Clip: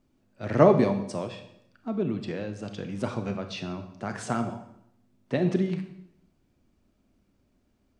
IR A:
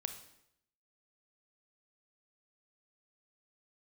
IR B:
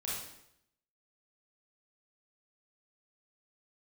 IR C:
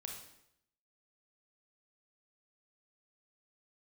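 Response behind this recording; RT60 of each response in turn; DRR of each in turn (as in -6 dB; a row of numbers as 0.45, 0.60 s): A; 0.75, 0.75, 0.75 s; 7.5, -7.0, 1.0 dB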